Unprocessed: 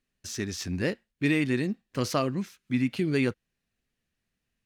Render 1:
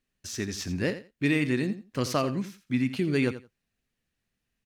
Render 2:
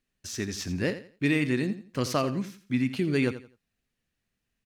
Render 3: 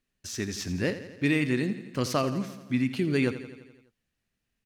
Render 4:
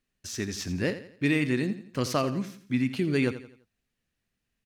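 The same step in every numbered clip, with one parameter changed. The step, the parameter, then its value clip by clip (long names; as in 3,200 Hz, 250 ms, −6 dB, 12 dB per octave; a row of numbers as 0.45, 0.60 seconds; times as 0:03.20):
repeating echo, feedback: 16, 26, 62, 39%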